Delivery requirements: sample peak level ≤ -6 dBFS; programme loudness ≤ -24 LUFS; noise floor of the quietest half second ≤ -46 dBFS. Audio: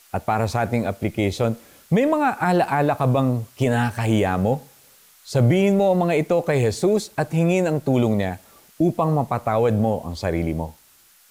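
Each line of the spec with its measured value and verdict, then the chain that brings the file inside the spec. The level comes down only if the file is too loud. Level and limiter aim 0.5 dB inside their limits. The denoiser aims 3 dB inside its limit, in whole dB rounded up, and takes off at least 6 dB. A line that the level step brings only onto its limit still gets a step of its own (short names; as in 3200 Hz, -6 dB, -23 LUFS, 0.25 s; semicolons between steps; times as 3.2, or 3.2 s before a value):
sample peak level -9.0 dBFS: OK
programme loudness -21.0 LUFS: fail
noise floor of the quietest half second -54 dBFS: OK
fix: gain -3.5 dB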